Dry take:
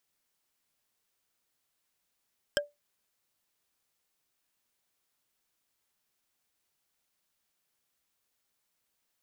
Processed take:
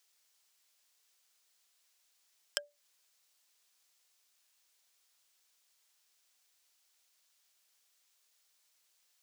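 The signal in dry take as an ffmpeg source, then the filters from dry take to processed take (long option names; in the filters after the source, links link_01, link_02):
-f lavfi -i "aevalsrc='0.0794*pow(10,-3*t/0.19)*sin(2*PI*583*t)+0.0794*pow(10,-3*t/0.056)*sin(2*PI*1607.3*t)+0.0794*pow(10,-3*t/0.025)*sin(2*PI*3150.5*t)+0.0794*pow(10,-3*t/0.014)*sin(2*PI*5207.9*t)+0.0794*pow(10,-3*t/0.008)*sin(2*PI*7777.2*t)':duration=0.45:sample_rate=44100"
-filter_complex "[0:a]acrossover=split=380 7300:gain=0.178 1 0.2[link_01][link_02][link_03];[link_01][link_02][link_03]amix=inputs=3:normalize=0,acompressor=threshold=-39dB:ratio=10,crystalizer=i=4:c=0"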